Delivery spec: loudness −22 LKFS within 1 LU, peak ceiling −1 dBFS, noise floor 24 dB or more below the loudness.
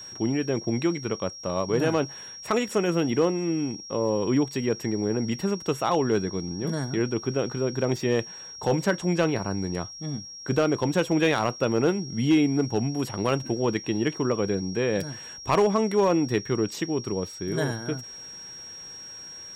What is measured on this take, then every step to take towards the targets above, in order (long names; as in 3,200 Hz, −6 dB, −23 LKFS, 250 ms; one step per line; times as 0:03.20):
share of clipped samples 0.3%; peaks flattened at −14.0 dBFS; interfering tone 5,600 Hz; level of the tone −39 dBFS; integrated loudness −26.0 LKFS; sample peak −14.0 dBFS; target loudness −22.0 LKFS
→ clipped peaks rebuilt −14 dBFS
notch filter 5,600 Hz, Q 30
level +4 dB